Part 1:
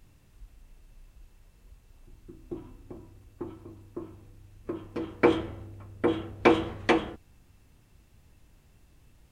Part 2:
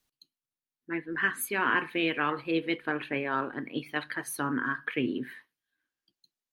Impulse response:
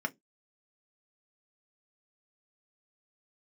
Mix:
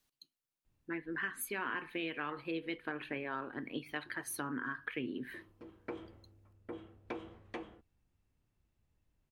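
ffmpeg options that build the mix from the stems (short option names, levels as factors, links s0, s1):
-filter_complex "[0:a]highshelf=f=4100:g=-5.5,adelay=650,volume=0.112[s0];[1:a]volume=0.891[s1];[s0][s1]amix=inputs=2:normalize=0,acompressor=threshold=0.0126:ratio=3"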